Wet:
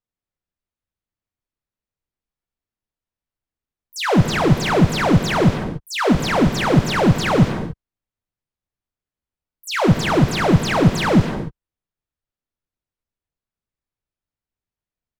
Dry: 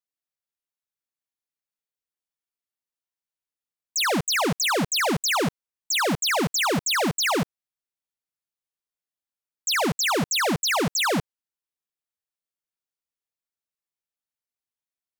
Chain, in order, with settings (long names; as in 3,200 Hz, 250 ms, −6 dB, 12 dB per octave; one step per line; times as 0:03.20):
RIAA equalisation playback
reverb whose tail is shaped and stops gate 310 ms flat, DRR 7 dB
pitch-shifted copies added −5 semitones −7 dB, −3 semitones −18 dB, +12 semitones −12 dB
level +2.5 dB